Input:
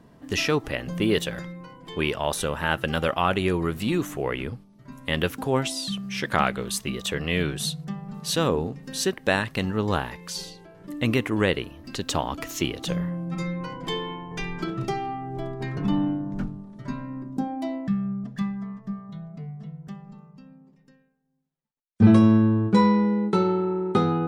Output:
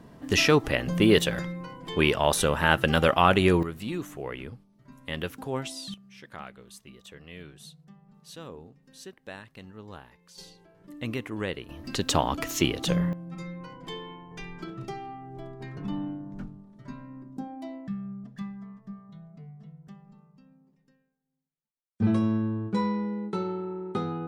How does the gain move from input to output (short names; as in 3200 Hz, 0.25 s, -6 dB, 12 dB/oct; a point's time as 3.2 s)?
+3 dB
from 3.63 s -8 dB
from 5.94 s -19.5 dB
from 10.38 s -9.5 dB
from 11.69 s +2 dB
from 13.13 s -9 dB